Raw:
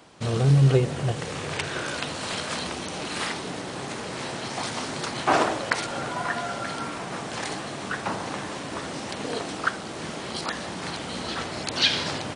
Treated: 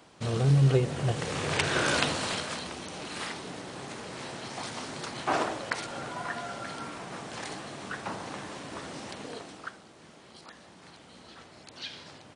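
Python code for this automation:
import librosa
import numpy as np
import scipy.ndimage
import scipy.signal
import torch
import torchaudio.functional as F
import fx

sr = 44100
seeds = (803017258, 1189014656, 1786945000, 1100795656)

y = fx.gain(x, sr, db=fx.line((0.84, -4.0), (1.97, 5.0), (2.62, -7.0), (9.07, -7.0), (9.96, -19.0)))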